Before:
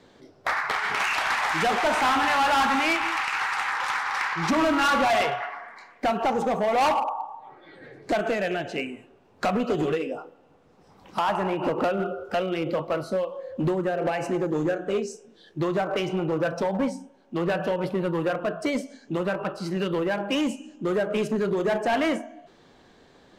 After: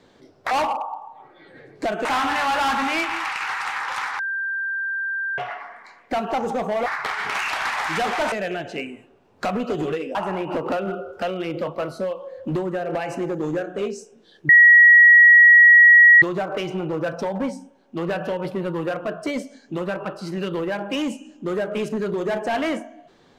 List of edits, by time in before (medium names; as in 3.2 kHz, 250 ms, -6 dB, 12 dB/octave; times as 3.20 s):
0.51–1.97 s: swap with 6.78–8.32 s
4.11–5.30 s: bleep 1.58 kHz -23 dBFS
10.15–11.27 s: delete
15.61 s: add tone 1.91 kHz -7 dBFS 1.73 s